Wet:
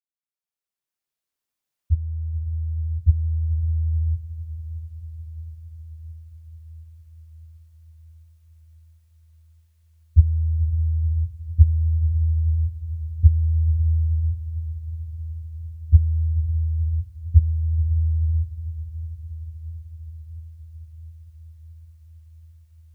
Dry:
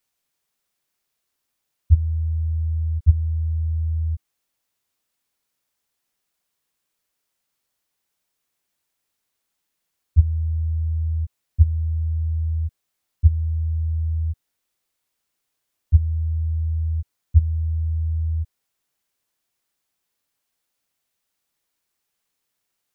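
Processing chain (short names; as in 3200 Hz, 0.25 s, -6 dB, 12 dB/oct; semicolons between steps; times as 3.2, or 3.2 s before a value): opening faded in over 4.51 s; diffused feedback echo 0.531 s, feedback 71%, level -13.5 dB; gain +1.5 dB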